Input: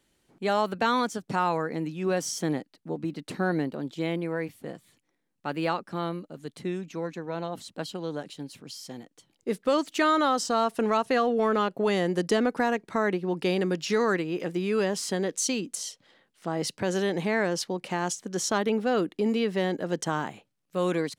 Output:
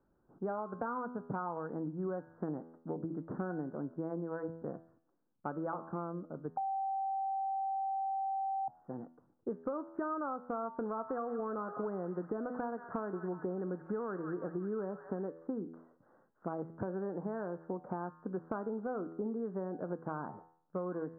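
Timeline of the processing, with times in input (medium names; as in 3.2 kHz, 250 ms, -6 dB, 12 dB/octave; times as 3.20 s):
6.57–8.68 s: bleep 777 Hz -23.5 dBFS
10.76–15.23 s: feedback echo behind a high-pass 180 ms, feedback 57%, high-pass 1.6 kHz, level -5.5 dB
whole clip: steep low-pass 1.5 kHz 72 dB/octave; de-hum 82.25 Hz, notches 31; compression 10:1, threshold -33 dBFS; trim -1 dB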